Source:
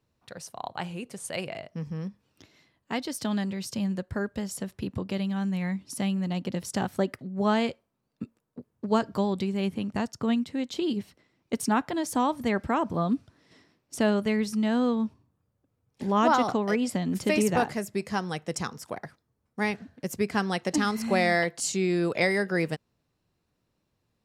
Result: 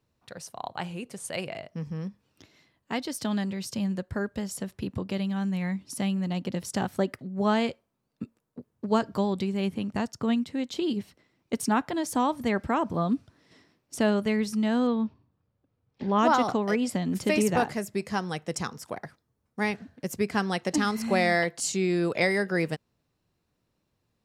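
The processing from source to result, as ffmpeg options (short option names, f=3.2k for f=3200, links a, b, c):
-filter_complex "[0:a]asettb=1/sr,asplit=3[a][b][c];[a]atrim=end=14.874[d];[b]atrim=start=14.87:end=16.19,asetpts=PTS-STARTPTS,afade=t=in:d=0.004:c=qsin,afade=t=out:st=1.316:d=0.004:c=qsin,lowpass=f=4.7k:w=0.5412,lowpass=f=4.7k:w=1.3066[e];[c]atrim=start=16.186[f];[d][e]acrossfade=d=0.004:c1=hsin:c2=qsin[g];[g][f]acrossfade=d=0.004:c1=qsin:c2=hsin"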